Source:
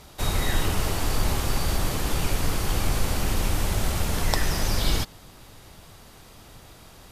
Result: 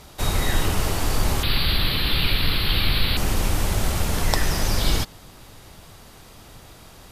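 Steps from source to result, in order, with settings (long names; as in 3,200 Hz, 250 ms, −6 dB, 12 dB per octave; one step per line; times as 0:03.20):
0:01.43–0:03.17: drawn EQ curve 170 Hz 0 dB, 760 Hz −6 dB, 4,200 Hz +14 dB, 6,400 Hz −27 dB, 12,000 Hz 0 dB
level +2.5 dB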